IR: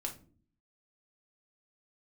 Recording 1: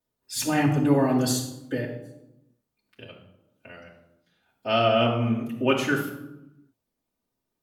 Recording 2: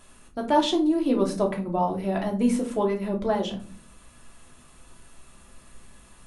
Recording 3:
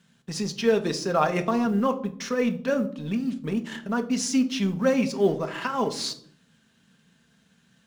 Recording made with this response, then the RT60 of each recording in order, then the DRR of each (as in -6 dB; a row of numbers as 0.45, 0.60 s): 2; 0.95 s, not exponential, 0.65 s; -11.5, 0.5, 7.5 dB